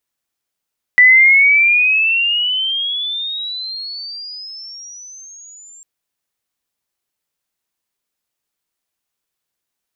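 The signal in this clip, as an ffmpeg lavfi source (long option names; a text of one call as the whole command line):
ffmpeg -f lavfi -i "aevalsrc='pow(10,(-4-34*t/4.85)/20)*sin(2*PI*1970*4.85/(23*log(2)/12)*(exp(23*log(2)/12*t/4.85)-1))':duration=4.85:sample_rate=44100" out.wav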